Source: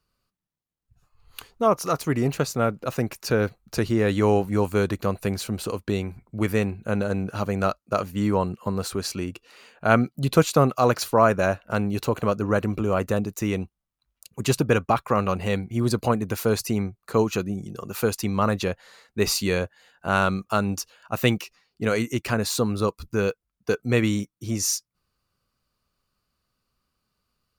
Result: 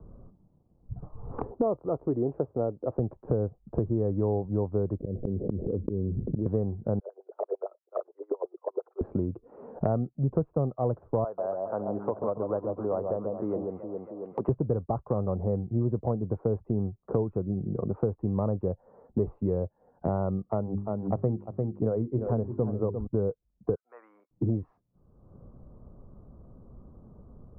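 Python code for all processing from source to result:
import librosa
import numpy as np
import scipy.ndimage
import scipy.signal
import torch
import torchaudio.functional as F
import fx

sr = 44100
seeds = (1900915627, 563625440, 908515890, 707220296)

y = fx.chain(x, sr, fx.highpass(hz=67.0, slope=12),
    fx.low_shelf_res(hz=220.0, db=-10.5, q=1.5), at=(1.51, 2.99))
y = fx.chain(y, sr, fx.steep_lowpass(hz=500.0, slope=36),
    fx.auto_swell(attack_ms=333.0),
    fx.env_flatten(amount_pct=70), at=(5.0, 6.46))
y = fx.chain(y, sr, fx.steep_highpass(hz=340.0, slope=96),
    fx.level_steps(step_db=16),
    fx.filter_lfo_bandpass(shape='sine', hz=8.8, low_hz=430.0, high_hz=6700.0, q=3.5), at=(6.99, 9.01))
y = fx.chain(y, sr, fx.highpass(hz=750.0, slope=12),
    fx.echo_alternate(ms=137, hz=1100.0, feedback_pct=56, wet_db=-5.0), at=(11.24, 14.49))
y = fx.chain(y, sr, fx.hum_notches(base_hz=50, count=8),
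    fx.echo_single(ms=348, db=-9.0), at=(20.43, 23.07))
y = fx.chain(y, sr, fx.highpass(hz=1200.0, slope=24),
    fx.peak_eq(hz=2200.0, db=5.0, octaves=1.7), at=(23.75, 24.31))
y = scipy.signal.sosfilt(scipy.signal.bessel(6, 500.0, 'lowpass', norm='mag', fs=sr, output='sos'), y)
y = fx.dynamic_eq(y, sr, hz=240.0, q=1.1, threshold_db=-38.0, ratio=4.0, max_db=-6)
y = fx.band_squash(y, sr, depth_pct=100)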